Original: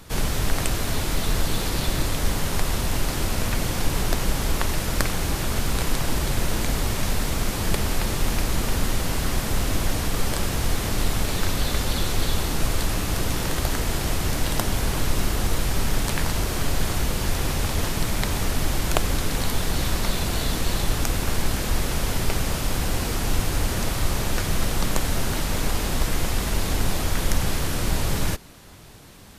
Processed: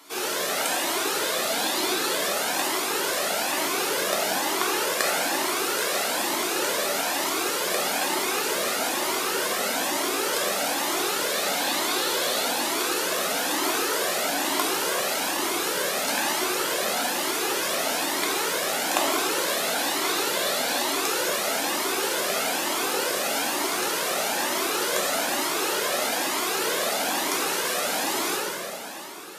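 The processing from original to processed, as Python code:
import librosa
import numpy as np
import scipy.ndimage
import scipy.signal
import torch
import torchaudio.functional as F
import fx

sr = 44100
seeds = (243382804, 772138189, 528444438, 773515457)

y = fx.octave_divider(x, sr, octaves=2, level_db=2.0)
y = scipy.signal.sosfilt(scipy.signal.butter(4, 320.0, 'highpass', fs=sr, output='sos'), y)
y = fx.echo_feedback(y, sr, ms=700, feedback_pct=57, wet_db=-15.0)
y = fx.rev_plate(y, sr, seeds[0], rt60_s=2.7, hf_ratio=0.75, predelay_ms=0, drr_db=-5.0)
y = fx.comb_cascade(y, sr, direction='rising', hz=1.1)
y = y * 10.0 ** (2.5 / 20.0)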